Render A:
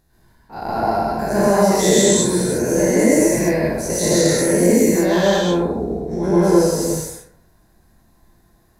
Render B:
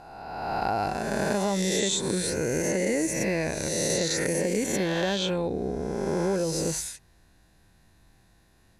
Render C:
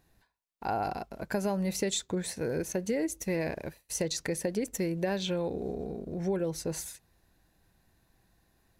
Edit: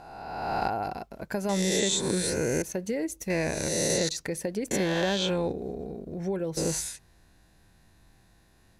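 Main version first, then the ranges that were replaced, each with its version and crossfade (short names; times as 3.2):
B
0.68–1.49 from C
2.62–3.3 from C
4.09–4.71 from C
5.52–6.57 from C
not used: A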